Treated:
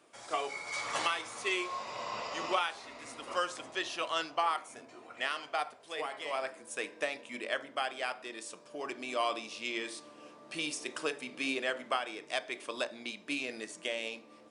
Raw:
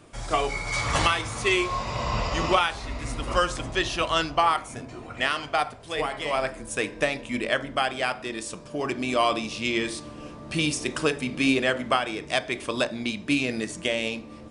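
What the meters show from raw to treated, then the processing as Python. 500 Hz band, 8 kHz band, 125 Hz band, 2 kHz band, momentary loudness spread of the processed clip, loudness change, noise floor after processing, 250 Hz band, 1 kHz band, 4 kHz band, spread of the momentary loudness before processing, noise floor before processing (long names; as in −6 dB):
−10.0 dB, −9.0 dB, −27.0 dB, −9.0 dB, 10 LU, −10.0 dB, −56 dBFS, −15.0 dB, −9.0 dB, −9.0 dB, 9 LU, −43 dBFS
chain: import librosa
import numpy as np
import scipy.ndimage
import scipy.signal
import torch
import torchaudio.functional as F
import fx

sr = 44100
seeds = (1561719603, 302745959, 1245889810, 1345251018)

y = scipy.signal.sosfilt(scipy.signal.butter(2, 370.0, 'highpass', fs=sr, output='sos'), x)
y = F.gain(torch.from_numpy(y), -9.0).numpy()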